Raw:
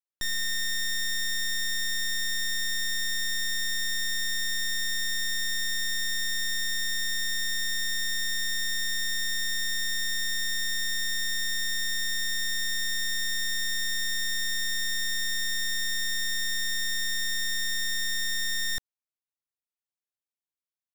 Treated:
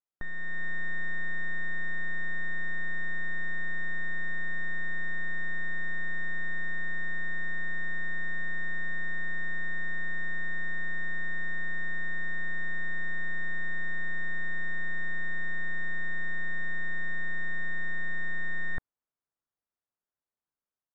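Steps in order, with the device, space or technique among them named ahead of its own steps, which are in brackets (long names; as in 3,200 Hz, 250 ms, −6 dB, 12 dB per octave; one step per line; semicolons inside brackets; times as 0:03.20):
action camera in a waterproof case (low-pass filter 1,600 Hz 24 dB per octave; automatic gain control gain up to 5 dB; AAC 64 kbit/s 32,000 Hz)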